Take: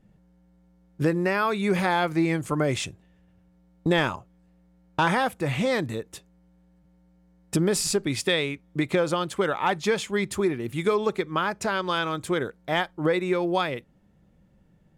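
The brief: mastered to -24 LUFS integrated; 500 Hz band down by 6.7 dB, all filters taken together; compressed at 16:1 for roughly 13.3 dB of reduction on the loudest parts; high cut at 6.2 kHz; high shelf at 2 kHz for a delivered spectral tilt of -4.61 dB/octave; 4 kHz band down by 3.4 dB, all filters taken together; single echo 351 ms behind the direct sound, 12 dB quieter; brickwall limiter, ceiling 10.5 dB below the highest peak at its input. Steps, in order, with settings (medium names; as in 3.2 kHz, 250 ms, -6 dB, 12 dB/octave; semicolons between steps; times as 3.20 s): low-pass 6.2 kHz; peaking EQ 500 Hz -9 dB; treble shelf 2 kHz +3 dB; peaking EQ 4 kHz -6.5 dB; compression 16:1, threshold -34 dBFS; peak limiter -32 dBFS; delay 351 ms -12 dB; trim +17.5 dB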